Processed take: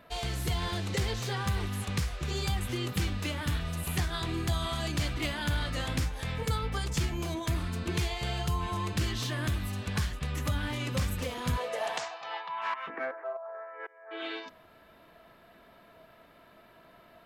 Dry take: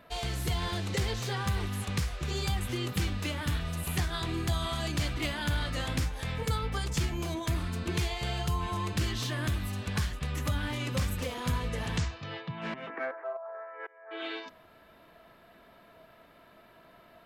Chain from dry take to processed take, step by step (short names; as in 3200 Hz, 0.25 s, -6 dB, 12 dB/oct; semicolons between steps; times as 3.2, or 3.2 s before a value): 11.56–12.86 resonant high-pass 560 Hz -> 1100 Hz, resonance Q 4.4